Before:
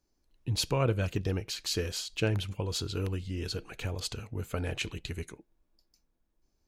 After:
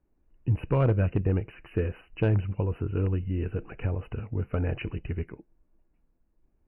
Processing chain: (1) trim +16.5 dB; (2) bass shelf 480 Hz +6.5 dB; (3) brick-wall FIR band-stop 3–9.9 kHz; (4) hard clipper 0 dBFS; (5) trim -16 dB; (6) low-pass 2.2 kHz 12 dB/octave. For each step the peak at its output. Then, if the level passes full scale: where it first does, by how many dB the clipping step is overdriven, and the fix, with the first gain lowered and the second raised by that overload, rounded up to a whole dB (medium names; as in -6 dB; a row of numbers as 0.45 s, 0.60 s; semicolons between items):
+1.5 dBFS, +6.0 dBFS, +6.0 dBFS, 0.0 dBFS, -16.0 dBFS, -16.0 dBFS; step 1, 6.0 dB; step 1 +10.5 dB, step 5 -10 dB